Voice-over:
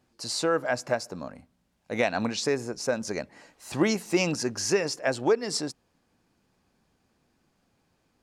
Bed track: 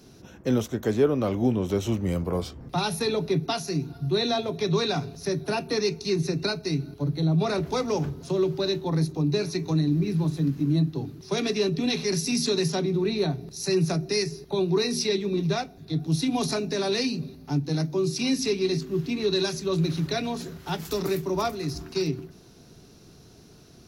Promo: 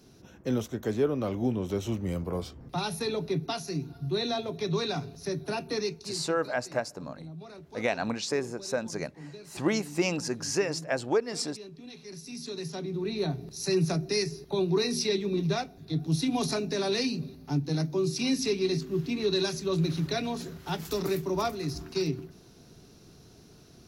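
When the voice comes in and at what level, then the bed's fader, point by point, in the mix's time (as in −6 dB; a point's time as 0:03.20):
5.85 s, −3.0 dB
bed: 0:05.82 −5 dB
0:06.37 −20.5 dB
0:11.90 −20.5 dB
0:13.40 −2.5 dB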